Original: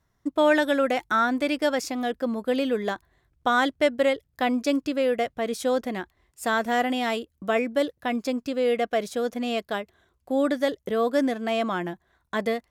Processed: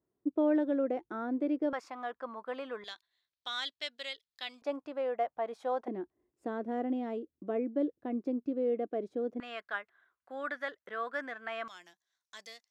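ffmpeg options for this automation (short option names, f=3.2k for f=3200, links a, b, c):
-af "asetnsamples=n=441:p=0,asendcmd='1.73 bandpass f 1100;2.84 bandpass f 4000;4.62 bandpass f 850;5.88 bandpass f 330;9.4 bandpass f 1500;11.68 bandpass f 5700',bandpass=f=360:t=q:w=2.8:csg=0"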